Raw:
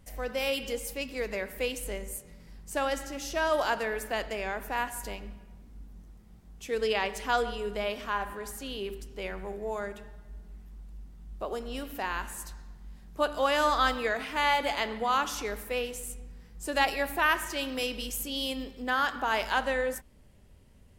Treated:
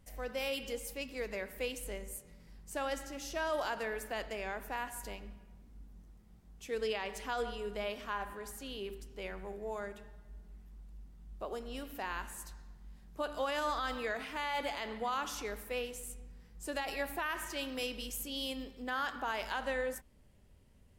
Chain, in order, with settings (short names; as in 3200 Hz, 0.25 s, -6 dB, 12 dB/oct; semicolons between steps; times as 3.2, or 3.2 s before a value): limiter -19.5 dBFS, peak gain reduction 10 dB; gain -6 dB